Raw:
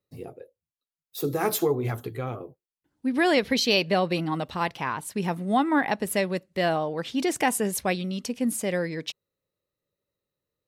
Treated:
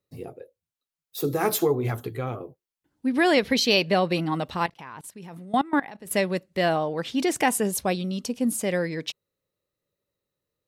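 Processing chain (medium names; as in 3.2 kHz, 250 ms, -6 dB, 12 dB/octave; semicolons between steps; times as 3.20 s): 4.66–6.11 s: level held to a coarse grid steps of 21 dB; 7.63–8.60 s: peaking EQ 2 kHz -7 dB 0.78 oct; trim +1.5 dB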